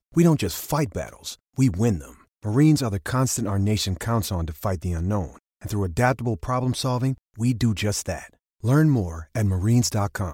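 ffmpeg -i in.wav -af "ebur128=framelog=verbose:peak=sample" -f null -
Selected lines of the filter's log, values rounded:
Integrated loudness:
  I:         -23.6 LUFS
  Threshold: -34.0 LUFS
Loudness range:
  LRA:         2.5 LU
  Threshold: -44.3 LUFS
  LRA low:   -25.7 LUFS
  LRA high:  -23.2 LUFS
Sample peak:
  Peak:       -6.5 dBFS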